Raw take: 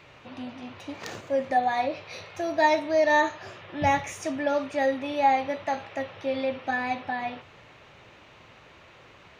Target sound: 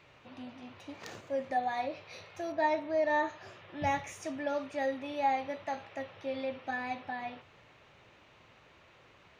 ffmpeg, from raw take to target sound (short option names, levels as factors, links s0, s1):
-filter_complex "[0:a]asettb=1/sr,asplit=3[s0][s1][s2];[s0]atrim=end=2.524[s3];[s1]atrim=start=2.52:end=3.29,asetpts=PTS-STARTPTS,afade=t=in:d=0.004:c=qsin,afade=t=out:st=0.766:d=0.004:c=qsin,aemphasis=mode=reproduction:type=75fm[s4];[s2]atrim=start=3.286[s5];[s3][s4]acrossfade=d=0.004:c1=hsin:c2=qsin[s6];[s6][s5]acrossfade=d=0.004:c1=qsin:c2=hsin,volume=0.398"